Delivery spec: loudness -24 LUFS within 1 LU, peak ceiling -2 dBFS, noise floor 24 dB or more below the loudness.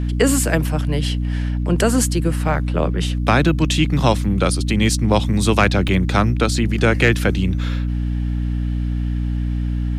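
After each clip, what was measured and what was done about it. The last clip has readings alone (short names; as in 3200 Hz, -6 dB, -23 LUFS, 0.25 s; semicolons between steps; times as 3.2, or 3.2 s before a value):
dropouts 1; longest dropout 3.2 ms; hum 60 Hz; harmonics up to 300 Hz; hum level -18 dBFS; loudness -19.0 LUFS; peak -1.5 dBFS; loudness target -24.0 LUFS
-> interpolate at 5.88, 3.2 ms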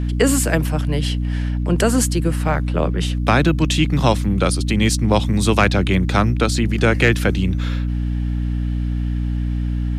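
dropouts 0; hum 60 Hz; harmonics up to 300 Hz; hum level -18 dBFS
-> de-hum 60 Hz, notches 5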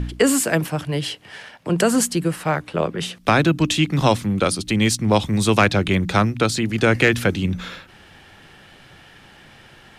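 hum none; loudness -19.5 LUFS; peak -3.0 dBFS; loudness target -24.0 LUFS
-> gain -4.5 dB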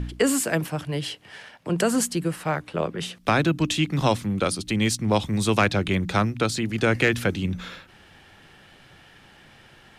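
loudness -24.0 LUFS; peak -7.5 dBFS; noise floor -52 dBFS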